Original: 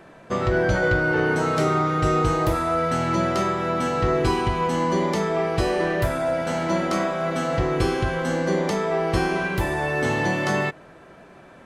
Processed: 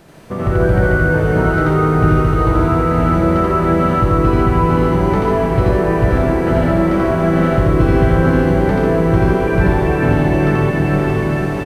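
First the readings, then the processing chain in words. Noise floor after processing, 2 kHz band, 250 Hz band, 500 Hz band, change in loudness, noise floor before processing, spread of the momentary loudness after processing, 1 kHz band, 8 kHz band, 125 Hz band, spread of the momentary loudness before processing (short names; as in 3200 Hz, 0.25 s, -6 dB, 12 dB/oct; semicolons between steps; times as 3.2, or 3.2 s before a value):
-19 dBFS, +4.0 dB, +10.5 dB, +7.0 dB, +8.5 dB, -47 dBFS, 2 LU, +5.5 dB, n/a, +12.5 dB, 4 LU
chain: added noise blue -37 dBFS; LPF 2200 Hz 12 dB/oct; diffused feedback echo 0.525 s, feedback 54%, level -5 dB; compressor, threshold -23 dBFS, peak gain reduction 8 dB; buzz 400 Hz, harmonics 34, -58 dBFS -1 dB/oct; loudspeakers at several distances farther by 29 m -1 dB, 49 m -5 dB, 98 m -11 dB; AGC gain up to 8.5 dB; low shelf 260 Hz +11 dB; gain -2.5 dB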